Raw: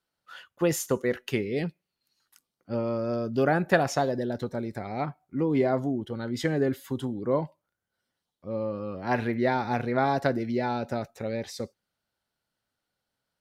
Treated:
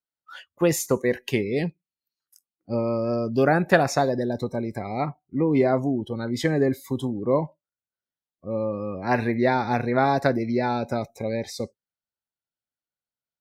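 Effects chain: spectral noise reduction 20 dB; trim +4 dB

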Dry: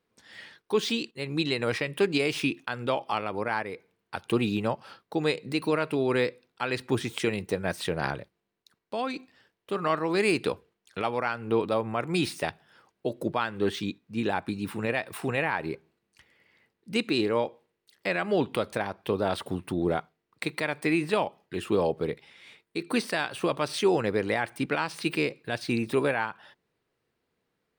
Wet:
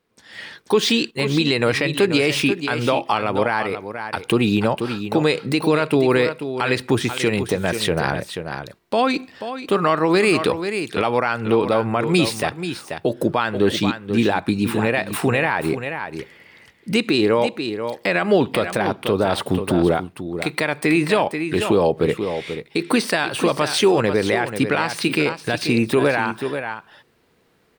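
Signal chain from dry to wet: in parallel at 0 dB: compression, threshold -37 dBFS, peak gain reduction 17 dB; on the sum: delay 485 ms -10.5 dB; level rider gain up to 11 dB; peak limiter -7 dBFS, peak gain reduction 5 dB

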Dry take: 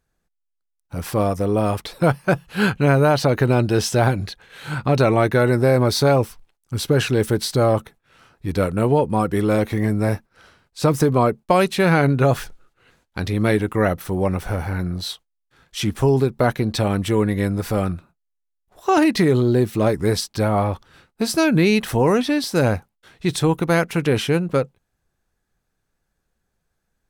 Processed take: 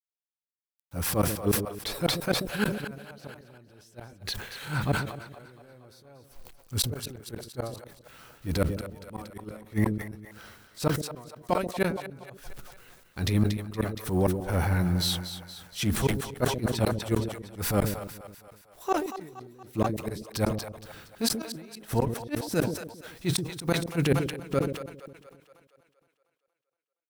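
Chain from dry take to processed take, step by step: transient shaper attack -12 dB, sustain +1 dB; bit crusher 10-bit; treble shelf 11 kHz +9.5 dB; inverted gate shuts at -13 dBFS, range -36 dB; two-band feedback delay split 510 Hz, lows 135 ms, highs 234 ms, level -11 dB; decay stretcher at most 75 dB/s

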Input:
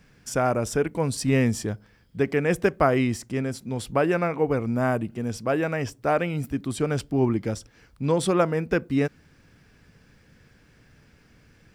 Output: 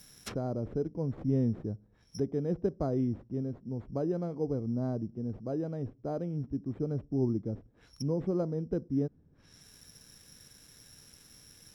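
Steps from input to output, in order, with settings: careless resampling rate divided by 8×, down none, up zero stuff; low-pass that closes with the level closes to 420 Hz, closed at -22.5 dBFS; trim -6 dB

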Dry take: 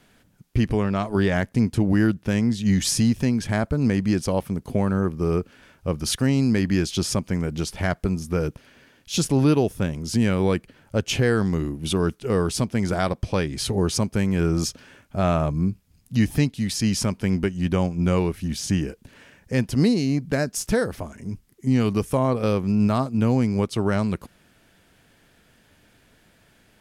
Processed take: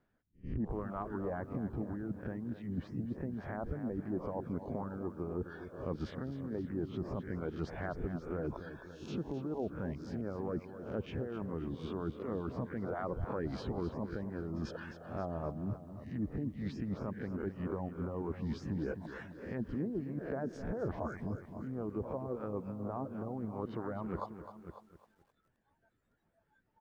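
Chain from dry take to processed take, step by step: reverse spectral sustain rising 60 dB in 0.44 s; spectral noise reduction 25 dB; low-pass that closes with the level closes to 790 Hz, closed at -15.5 dBFS; distance through air 96 m; reverse; compression 6:1, threshold -38 dBFS, peak gain reduction 21.5 dB; reverse; reverb removal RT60 0.7 s; on a send: delay 543 ms -16.5 dB; on the sum: harmonic-percussive split harmonic -11 dB; high-order bell 4.9 kHz -11.5 dB 2.6 oct; pre-echo 89 ms -20 dB; peak limiter -37 dBFS, peak gain reduction 8.5 dB; bit-crushed delay 260 ms, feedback 35%, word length 13-bit, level -11 dB; trim +9.5 dB

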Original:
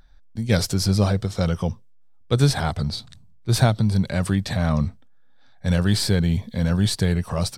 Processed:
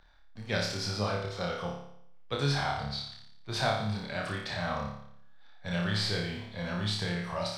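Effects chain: companding laws mixed up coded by mu; three-band isolator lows -12 dB, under 560 Hz, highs -20 dB, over 5.1 kHz; flutter echo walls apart 4.9 m, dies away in 0.69 s; trim -6.5 dB

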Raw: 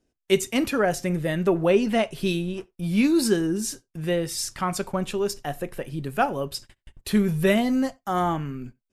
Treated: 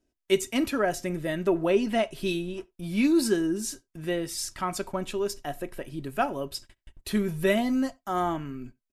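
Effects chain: comb 3.1 ms, depth 37%; trim -4 dB

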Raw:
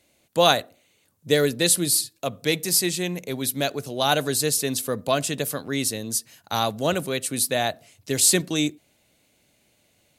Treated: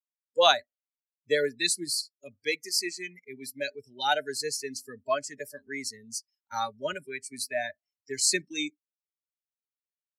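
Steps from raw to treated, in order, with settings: expander on every frequency bin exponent 1.5; three-band isolator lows -18 dB, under 410 Hz, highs -20 dB, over 7.7 kHz; spectral noise reduction 26 dB

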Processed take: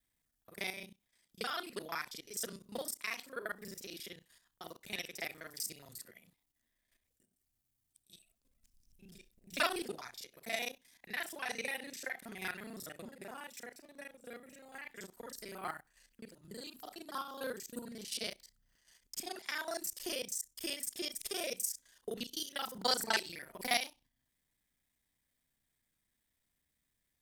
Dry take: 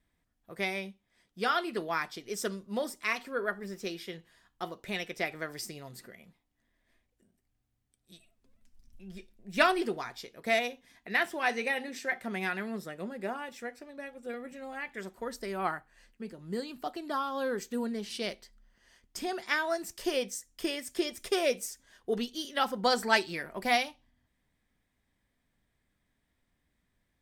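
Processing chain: time reversed locally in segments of 32 ms; pre-emphasis filter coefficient 0.8; level held to a coarse grid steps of 9 dB; trim +7 dB

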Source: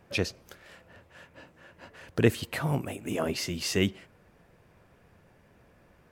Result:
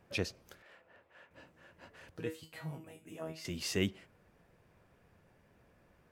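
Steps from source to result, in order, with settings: 0.62–1.31 s: tone controls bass -13 dB, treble -12 dB; 2.17–3.45 s: feedback comb 160 Hz, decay 0.28 s, harmonics all, mix 90%; trim -6.5 dB

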